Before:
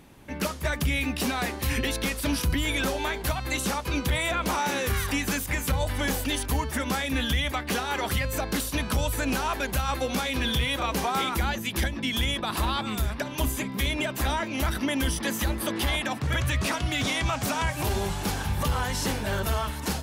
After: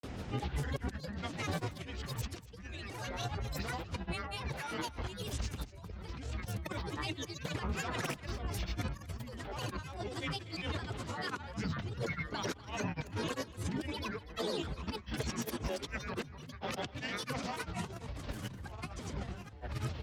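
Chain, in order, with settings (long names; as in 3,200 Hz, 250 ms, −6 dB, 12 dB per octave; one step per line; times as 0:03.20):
low-pass filter 7,600 Hz 24 dB per octave
low-shelf EQ 130 Hz +7.5 dB
compressor whose output falls as the input rises −33 dBFS, ratio −0.5
brickwall limiter −24.5 dBFS, peak gain reduction 12 dB
granular cloud, grains 20 per second, pitch spread up and down by 12 semitones
frequency shifter +24 Hz
on a send: single-tap delay 242 ms −18 dB
on the sum: level −1.5 dB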